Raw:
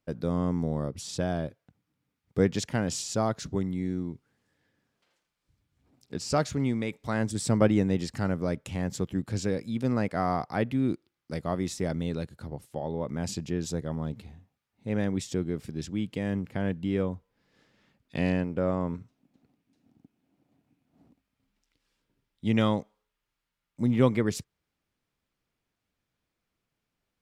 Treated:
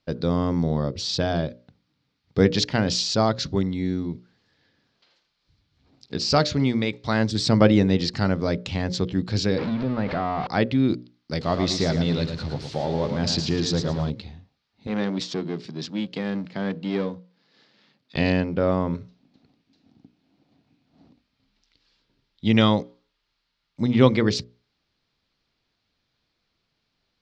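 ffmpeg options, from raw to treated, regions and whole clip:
-filter_complex "[0:a]asettb=1/sr,asplit=3[s0][s1][s2];[s0]atrim=end=9.584[s3];[s1]atrim=start=9.58:end=10.47,asetpts=PTS-STARTPTS,afade=t=in:d=0.004:c=qsin,afade=t=out:st=0.886:d=0.004:c=qsin,aeval=exprs='val(0)+0.5*0.0335*sgn(val(0))':c=same,lowpass=2000,acompressor=threshold=0.0355:ratio=3:attack=3.2:release=140:knee=1:detection=peak[s4];[s2]atrim=start=10.466[s5];[s3][s4]acrossfade=d=0.004:c1=hsin:c2=qsin[s6];[s6][s5]acrossfade=d=0.004:c1=qsin:c2=hsin,asettb=1/sr,asplit=3[s7][s8][s9];[s7]atrim=end=11.414[s10];[s8]atrim=start=11.41:end=14.1,asetpts=PTS-STARTPTS,afade=t=in:d=0.004:c=qsin,afade=t=out:st=2.686:d=0.004:c=qsin,aeval=exprs='val(0)+0.5*0.00708*sgn(val(0))':c=same,aecho=1:1:111|222|333:0.447|0.121|0.0326,atrim=end_sample=118629[s11];[s9]atrim=start=14.096[s12];[s10][s11]acrossfade=d=0.004:c1=hsin:c2=qsin[s13];[s13][s12]acrossfade=d=0.004:c1=qsin:c2=hsin,asettb=1/sr,asplit=3[s14][s15][s16];[s14]atrim=end=14.874[s17];[s15]atrim=start=14.87:end=18.16,asetpts=PTS-STARTPTS,afade=t=in:d=0.004:c=qsin,afade=t=out:st=3.286:d=0.004:c=qsin,aeval=exprs='if(lt(val(0),0),0.447*val(0),val(0))':c=same,highpass=f=140:w=0.5412,highpass=f=140:w=1.3066[s18];[s16]atrim=start=18.156[s19];[s17][s18]acrossfade=d=0.004:c1=hsin:c2=qsin[s20];[s20][s19]acrossfade=d=0.004:c1=qsin:c2=hsin,lowpass=f=5600:w=0.5412,lowpass=f=5600:w=1.3066,equalizer=f=4300:w=1.7:g=10.5,bandreject=f=60:t=h:w=6,bandreject=f=120:t=h:w=6,bandreject=f=180:t=h:w=6,bandreject=f=240:t=h:w=6,bandreject=f=300:t=h:w=6,bandreject=f=360:t=h:w=6,bandreject=f=420:t=h:w=6,bandreject=f=480:t=h:w=6,bandreject=f=540:t=h:w=6,bandreject=f=600:t=h:w=6,volume=2.11"

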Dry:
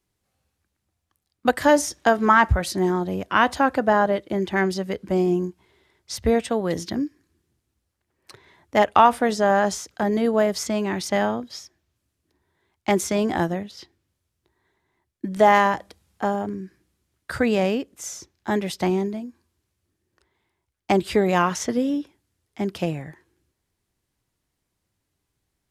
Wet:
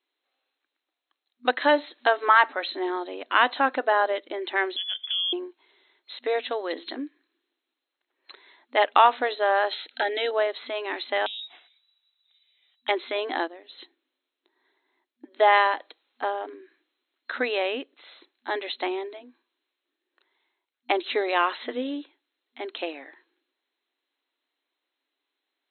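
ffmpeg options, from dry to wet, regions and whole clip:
-filter_complex "[0:a]asettb=1/sr,asplit=3[s0][s1][s2];[s0]atrim=end=4.764[s3];[s1]atrim=start=4.76:end=5.33,asetpts=PTS-STARTPTS,afade=t=in:d=0.004:c=qsin,afade=t=out:st=0.566:d=0.004:c=qsin,highpass=41,acompressor=threshold=0.0316:ratio=4:attack=3.2:release=140:knee=1:detection=peak,lowpass=f=3100:t=q:w=0.5098,lowpass=f=3100:t=q:w=0.6013,lowpass=f=3100:t=q:w=0.9,lowpass=f=3100:t=q:w=2.563,afreqshift=-3600[s4];[s2]atrim=start=5.326[s5];[s3][s4]acrossfade=d=0.004:c1=hsin:c2=qsin[s6];[s6][s5]acrossfade=d=0.004:c1=qsin:c2=hsin,asettb=1/sr,asplit=3[s7][s8][s9];[s7]atrim=end=9.714[s10];[s8]atrim=start=9.71:end=10.31,asetpts=PTS-STARTPTS,afade=t=in:d=0.004:c=qsin,afade=t=out:st=0.596:d=0.004:c=qsin,asuperstop=centerf=1100:order=20:qfactor=3.7,equalizer=f=4100:t=o:w=2.8:g=9.5[s11];[s9]atrim=start=10.306[s12];[s10][s11]acrossfade=d=0.004:c1=hsin:c2=qsin[s13];[s13][s12]acrossfade=d=0.004:c1=qsin:c2=hsin,asettb=1/sr,asplit=3[s14][s15][s16];[s14]atrim=end=11.264[s17];[s15]atrim=start=11.26:end=12.89,asetpts=PTS-STARTPTS,afade=t=in:d=0.004:c=qsin,afade=t=out:st=1.626:d=0.004:c=qsin,lowpass=f=3400:t=q:w=0.5098,lowpass=f=3400:t=q:w=0.6013,lowpass=f=3400:t=q:w=0.9,lowpass=f=3400:t=q:w=2.563,afreqshift=-4000,acompressor=threshold=0.0178:ratio=12:attack=3.2:release=140:knee=1:detection=peak[s18];[s16]atrim=start=12.886[s19];[s17][s18]acrossfade=d=0.004:c1=hsin:c2=qsin[s20];[s20][s19]acrossfade=d=0.004:c1=qsin:c2=hsin,asettb=1/sr,asplit=3[s21][s22][s23];[s21]atrim=end=13.474[s24];[s22]atrim=start=13.47:end=15.4,asetpts=PTS-STARTPTS,afade=t=in:d=0.004:c=qsin,afade=t=out:st=1.926:d=0.004:c=qsin,lowshelf=f=290:g=11,acompressor=threshold=0.0178:ratio=3:attack=3.2:release=140:knee=1:detection=peak[s25];[s23]atrim=start=15.396[s26];[s24][s25]acrossfade=d=0.004:c1=hsin:c2=qsin[s27];[s27][s26]acrossfade=d=0.004:c1=qsin:c2=hsin,aemphasis=mode=production:type=riaa,afftfilt=real='re*between(b*sr/4096,240,4200)':imag='im*between(b*sr/4096,240,4200)':win_size=4096:overlap=0.75,volume=0.794"

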